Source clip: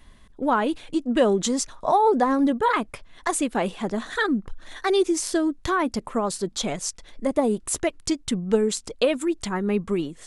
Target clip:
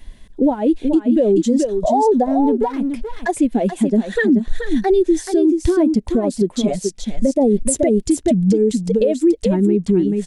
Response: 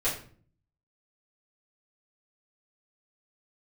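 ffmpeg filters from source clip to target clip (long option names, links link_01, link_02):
-filter_complex "[0:a]acompressor=threshold=-35dB:ratio=5,equalizer=frequency=1200:width_type=o:width=0.57:gain=-11,asettb=1/sr,asplit=3[link_01][link_02][link_03];[link_01]atrim=end=2.264[link_04];[link_02]atrim=start=2.26:end=2.88,asetpts=PTS-STARTPTS,afade=type=in:duration=0.004:curve=qsin,afade=type=out:start_time=0.616:duration=0.004:curve=qsin,aeval=exprs='clip(val(0),-1,0.00841)':channel_layout=same[link_05];[link_03]atrim=start=2.876[link_06];[link_04][link_05]acrossfade=duration=0.004:curve1=hsin:curve2=qsin[link_07];[link_07][link_06]acrossfade=duration=0.004:curve1=qsin:curve2=hsin,asettb=1/sr,asplit=3[link_08][link_09][link_10];[link_08]atrim=end=7.384[link_11];[link_09]atrim=start=7.38:end=8.01,asetpts=PTS-STARTPTS,afade=type=in:duration=0.004:curve=qsin,afade=type=out:start_time=0.626:duration=0.004:curve=qsin,acontrast=31[link_12];[link_10]atrim=start=8.006[link_13];[link_11][link_12]acrossfade=duration=0.004:curve1=hsin:curve2=qsin[link_14];[link_14][link_13]acrossfade=duration=0.004:curve1=qsin:curve2=hsin,asplit=2[link_15][link_16];[link_16]aecho=0:1:430:0.596[link_17];[link_15][link_17]amix=inputs=2:normalize=0,afftdn=noise_reduction=19:noise_floor=-25,alimiter=level_in=31.5dB:limit=-1dB:release=50:level=0:latency=1,volume=-6.5dB"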